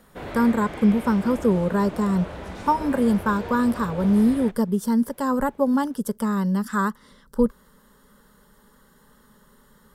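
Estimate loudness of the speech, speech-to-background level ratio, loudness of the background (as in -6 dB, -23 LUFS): -22.5 LUFS, 13.5 dB, -36.0 LUFS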